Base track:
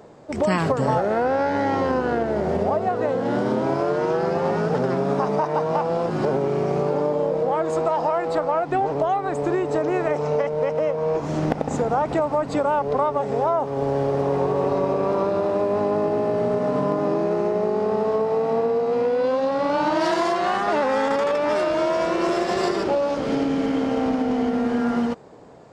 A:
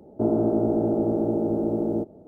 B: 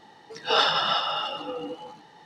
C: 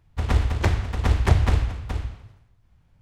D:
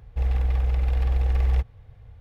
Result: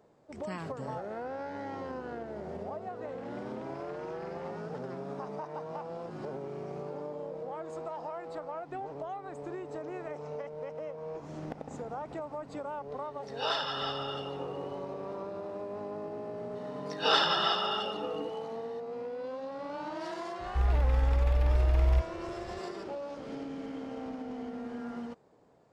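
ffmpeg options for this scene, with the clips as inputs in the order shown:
ffmpeg -i bed.wav -i cue0.wav -i cue1.wav -i cue2.wav -i cue3.wav -filter_complex "[4:a]asplit=2[link_01][link_02];[2:a]asplit=2[link_03][link_04];[0:a]volume=-17.5dB[link_05];[link_01]highpass=520,lowpass=2100,atrim=end=2.2,asetpts=PTS-STARTPTS,volume=-10.5dB,afade=type=in:duration=0.004:curve=hsin,afade=type=out:start_time=2.196:duration=0.004:curve=hsin,adelay=2870[link_06];[link_03]atrim=end=2.25,asetpts=PTS-STARTPTS,volume=-11dB,afade=type=in:duration=0.004:curve=hsin,afade=type=out:start_time=2.246:duration=0.004:curve=hsin,adelay=12920[link_07];[link_04]atrim=end=2.25,asetpts=PTS-STARTPTS,volume=-4dB,afade=type=in:duration=0.004:curve=hsin,afade=type=out:start_time=2.246:duration=0.004:curve=hsin,adelay=16550[link_08];[link_02]atrim=end=2.2,asetpts=PTS-STARTPTS,volume=-3.5dB,afade=type=in:duration=0.004:curve=hsin,afade=type=out:start_time=2.196:duration=0.004:curve=hsin,adelay=20390[link_09];[link_05][link_06][link_07][link_08][link_09]amix=inputs=5:normalize=0" out.wav

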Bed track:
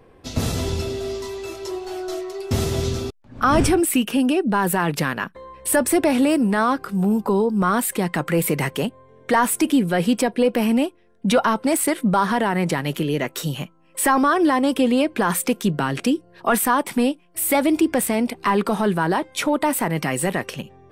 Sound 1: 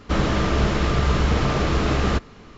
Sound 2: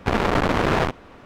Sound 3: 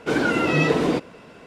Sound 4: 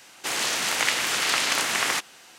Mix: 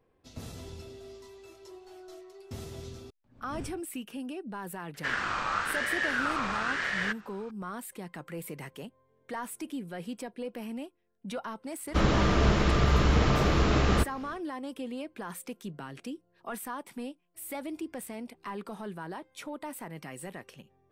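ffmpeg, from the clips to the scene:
ffmpeg -i bed.wav -i cue0.wav -filter_complex "[1:a]asplit=2[link_01][link_02];[0:a]volume=-19.5dB[link_03];[link_01]aeval=exprs='val(0)*sin(2*PI*1500*n/s+1500*0.2/1*sin(2*PI*1*n/s))':channel_layout=same,atrim=end=2.57,asetpts=PTS-STARTPTS,volume=-8.5dB,afade=type=in:duration=0.004:curve=hsin,afade=type=out:start_time=2.566:duration=0.004:curve=hsin,adelay=4940[link_04];[link_02]atrim=end=2.57,asetpts=PTS-STARTPTS,volume=-3.5dB,afade=type=in:duration=0.1,afade=type=out:start_time=2.47:duration=0.1,adelay=11850[link_05];[link_03][link_04][link_05]amix=inputs=3:normalize=0" out.wav

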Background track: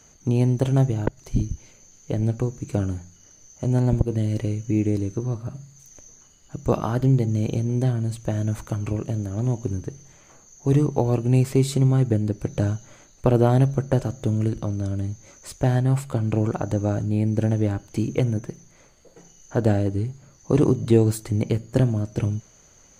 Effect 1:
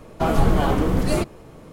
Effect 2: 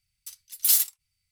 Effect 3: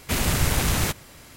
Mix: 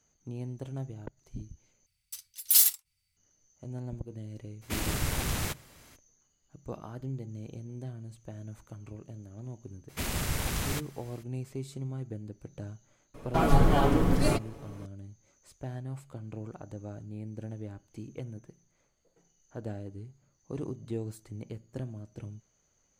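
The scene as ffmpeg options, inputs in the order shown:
ffmpeg -i bed.wav -i cue0.wav -i cue1.wav -i cue2.wav -filter_complex "[3:a]asplit=2[link_01][link_02];[0:a]volume=-18.5dB[link_03];[1:a]aecho=1:1:7.1:0.48[link_04];[link_03]asplit=2[link_05][link_06];[link_05]atrim=end=1.864[link_07];[2:a]atrim=end=1.31,asetpts=PTS-STARTPTS,volume=-0.5dB[link_08];[link_06]atrim=start=3.166[link_09];[link_01]atrim=end=1.36,asetpts=PTS-STARTPTS,volume=-9dB,afade=type=in:duration=0.02,afade=type=out:start_time=1.34:duration=0.02,adelay=203301S[link_10];[link_02]atrim=end=1.36,asetpts=PTS-STARTPTS,volume=-9.5dB,afade=type=in:duration=0.02,afade=type=out:start_time=1.34:duration=0.02,adelay=9880[link_11];[link_04]atrim=end=1.72,asetpts=PTS-STARTPTS,volume=-5dB,afade=type=in:duration=0.004:curve=hsin,afade=type=out:start_time=1.716:duration=0.004:curve=hsin,adelay=13140[link_12];[link_07][link_08]acrossfade=duration=0.004:curve1=hsin:curve2=hsin[link_13];[link_13][link_09]acrossfade=duration=0.004:curve1=hsin:curve2=hsin[link_14];[link_14][link_10][link_11][link_12]amix=inputs=4:normalize=0" out.wav

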